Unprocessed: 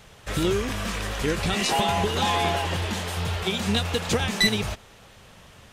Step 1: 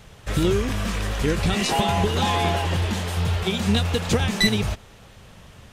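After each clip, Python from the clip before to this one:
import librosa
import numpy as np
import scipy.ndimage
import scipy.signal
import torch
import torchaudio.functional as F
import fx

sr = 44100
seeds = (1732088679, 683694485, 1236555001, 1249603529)

y = fx.low_shelf(x, sr, hz=280.0, db=6.5)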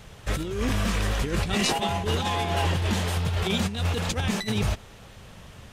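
y = fx.over_compress(x, sr, threshold_db=-23.0, ratio=-0.5)
y = y * 10.0 ** (-1.5 / 20.0)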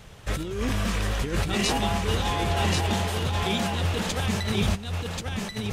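y = x + 10.0 ** (-3.5 / 20.0) * np.pad(x, (int(1084 * sr / 1000.0), 0))[:len(x)]
y = y * 10.0 ** (-1.0 / 20.0)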